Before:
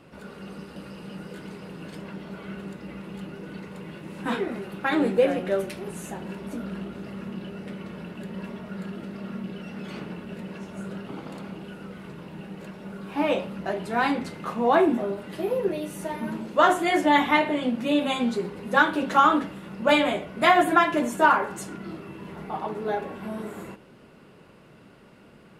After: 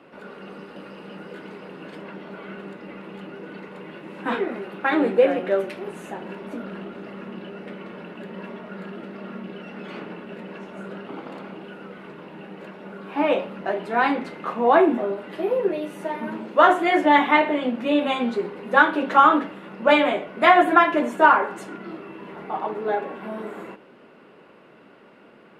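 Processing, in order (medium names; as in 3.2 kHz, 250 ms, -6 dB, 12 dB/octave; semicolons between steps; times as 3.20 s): three-band isolator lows -19 dB, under 220 Hz, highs -14 dB, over 3.4 kHz; trim +4 dB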